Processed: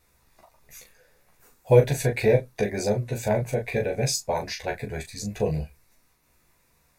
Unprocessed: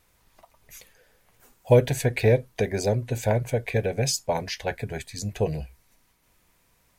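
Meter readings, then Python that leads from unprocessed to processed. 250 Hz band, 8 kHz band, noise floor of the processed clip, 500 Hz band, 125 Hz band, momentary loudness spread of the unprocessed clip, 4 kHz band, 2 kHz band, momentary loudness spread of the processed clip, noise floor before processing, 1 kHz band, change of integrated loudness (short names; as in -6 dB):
0.0 dB, 0.0 dB, -66 dBFS, +0.5 dB, -1.0 dB, 13 LU, -1.0 dB, 0.0 dB, 14 LU, -66 dBFS, 0.0 dB, 0.0 dB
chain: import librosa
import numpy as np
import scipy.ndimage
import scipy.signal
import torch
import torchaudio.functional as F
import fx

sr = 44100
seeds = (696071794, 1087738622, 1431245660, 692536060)

y = fx.notch(x, sr, hz=3100.0, q=6.2)
y = fx.room_early_taps(y, sr, ms=(14, 39), db=(-3.0, -5.5))
y = y * librosa.db_to_amplitude(-2.5)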